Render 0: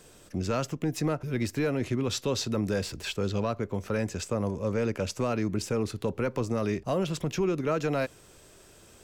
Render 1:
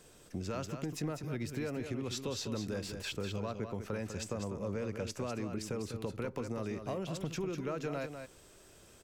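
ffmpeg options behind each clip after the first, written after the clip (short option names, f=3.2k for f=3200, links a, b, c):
-filter_complex "[0:a]acompressor=threshold=-29dB:ratio=6,asplit=2[a][b];[b]aecho=0:1:199:0.422[c];[a][c]amix=inputs=2:normalize=0,volume=-5dB"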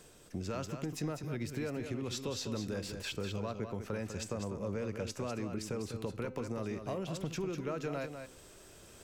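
-af "bandreject=f=257.3:t=h:w=4,bandreject=f=514.6:t=h:w=4,bandreject=f=771.9:t=h:w=4,bandreject=f=1.0292k:t=h:w=4,bandreject=f=1.2865k:t=h:w=4,bandreject=f=1.5438k:t=h:w=4,bandreject=f=1.8011k:t=h:w=4,bandreject=f=2.0584k:t=h:w=4,bandreject=f=2.3157k:t=h:w=4,bandreject=f=2.573k:t=h:w=4,bandreject=f=2.8303k:t=h:w=4,bandreject=f=3.0876k:t=h:w=4,bandreject=f=3.3449k:t=h:w=4,bandreject=f=3.6022k:t=h:w=4,bandreject=f=3.8595k:t=h:w=4,bandreject=f=4.1168k:t=h:w=4,bandreject=f=4.3741k:t=h:w=4,bandreject=f=4.6314k:t=h:w=4,bandreject=f=4.8887k:t=h:w=4,bandreject=f=5.146k:t=h:w=4,bandreject=f=5.4033k:t=h:w=4,bandreject=f=5.6606k:t=h:w=4,bandreject=f=5.9179k:t=h:w=4,bandreject=f=6.1752k:t=h:w=4,bandreject=f=6.4325k:t=h:w=4,bandreject=f=6.6898k:t=h:w=4,bandreject=f=6.9471k:t=h:w=4,bandreject=f=7.2044k:t=h:w=4,bandreject=f=7.4617k:t=h:w=4,bandreject=f=7.719k:t=h:w=4,bandreject=f=7.9763k:t=h:w=4,bandreject=f=8.2336k:t=h:w=4,bandreject=f=8.4909k:t=h:w=4,areverse,acompressor=mode=upward:threshold=-49dB:ratio=2.5,areverse"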